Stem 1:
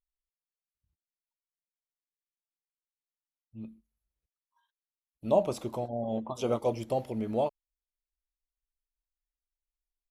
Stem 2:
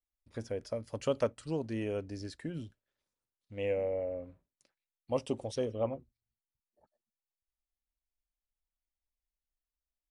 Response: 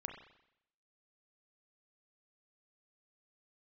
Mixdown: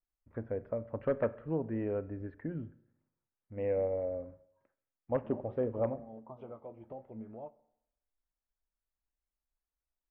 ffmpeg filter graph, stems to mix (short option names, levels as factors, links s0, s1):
-filter_complex "[0:a]acompressor=threshold=0.0178:ratio=4,flanger=delay=6.4:depth=5.4:regen=55:speed=0.66:shape=sinusoidal,volume=0.447,asplit=2[s0][s1];[s1]volume=0.335[s2];[1:a]lowpass=2800,aeval=exprs='0.075*(abs(mod(val(0)/0.075+3,4)-2)-1)':c=same,volume=0.841,asplit=3[s3][s4][s5];[s4]volume=0.447[s6];[s5]apad=whole_len=445475[s7];[s0][s7]sidechaincompress=threshold=0.0178:ratio=8:attack=16:release=390[s8];[2:a]atrim=start_sample=2205[s9];[s2][s6]amix=inputs=2:normalize=0[s10];[s10][s9]afir=irnorm=-1:irlink=0[s11];[s8][s3][s11]amix=inputs=3:normalize=0,lowpass=f=1800:w=0.5412,lowpass=f=1800:w=1.3066"